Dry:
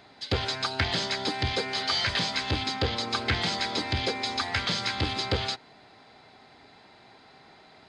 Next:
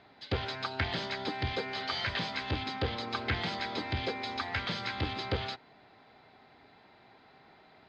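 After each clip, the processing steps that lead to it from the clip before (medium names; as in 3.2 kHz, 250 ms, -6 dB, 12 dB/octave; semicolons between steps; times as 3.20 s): low-pass 3.4 kHz 12 dB/octave; trim -4.5 dB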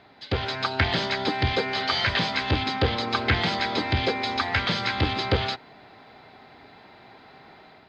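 level rider gain up to 4.5 dB; trim +5 dB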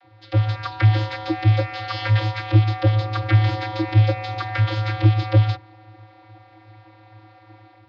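vocoder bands 32, square 107 Hz; trim +7.5 dB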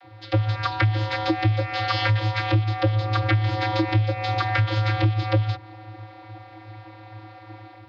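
compression 6:1, threshold -24 dBFS, peak gain reduction 13.5 dB; trim +5.5 dB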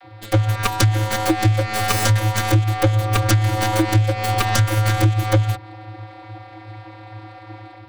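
tracing distortion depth 0.44 ms; trim +4.5 dB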